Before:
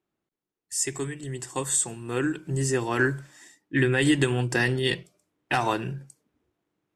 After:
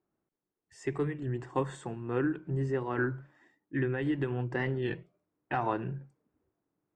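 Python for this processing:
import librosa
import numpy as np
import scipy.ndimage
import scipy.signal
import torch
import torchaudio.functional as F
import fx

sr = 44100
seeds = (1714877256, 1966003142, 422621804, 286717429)

y = scipy.signal.sosfilt(scipy.signal.butter(2, 1500.0, 'lowpass', fs=sr, output='sos'), x)
y = fx.rider(y, sr, range_db=5, speed_s=0.5)
y = fx.record_warp(y, sr, rpm=33.33, depth_cents=100.0)
y = F.gain(torch.from_numpy(y), -4.5).numpy()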